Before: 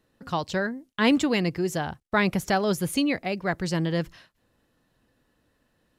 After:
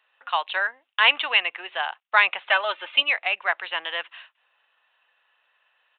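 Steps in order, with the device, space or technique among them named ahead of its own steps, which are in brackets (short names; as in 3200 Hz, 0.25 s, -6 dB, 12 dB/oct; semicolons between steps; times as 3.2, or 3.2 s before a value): 2.5–3.03 comb 3.3 ms, depth 69%; musical greeting card (downsampling 8000 Hz; HPF 820 Hz 24 dB/oct; bell 2700 Hz +7.5 dB 0.33 oct); gain +7 dB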